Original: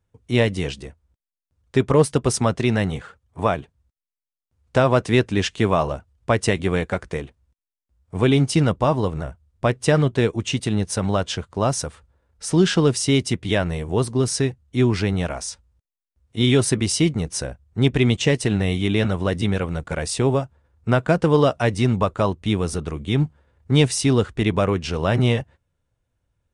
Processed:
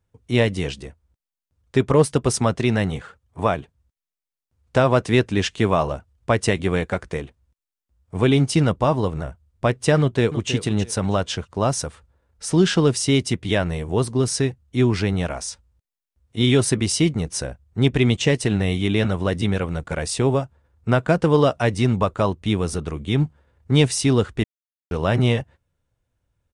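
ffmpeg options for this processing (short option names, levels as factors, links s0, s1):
-filter_complex "[0:a]asplit=2[s0][s1];[s1]afade=t=in:st=9.99:d=0.01,afade=t=out:st=10.51:d=0.01,aecho=0:1:320|640|960:0.298538|0.0597077|0.0119415[s2];[s0][s2]amix=inputs=2:normalize=0,asplit=3[s3][s4][s5];[s3]atrim=end=24.44,asetpts=PTS-STARTPTS,afade=t=out:st=24.436:d=0.004:c=hsin[s6];[s4]atrim=start=24.44:end=24.91,asetpts=PTS-STARTPTS,volume=0[s7];[s5]atrim=start=24.91,asetpts=PTS-STARTPTS,afade=t=in:d=0.004:c=hsin[s8];[s6][s7][s8]concat=n=3:v=0:a=1"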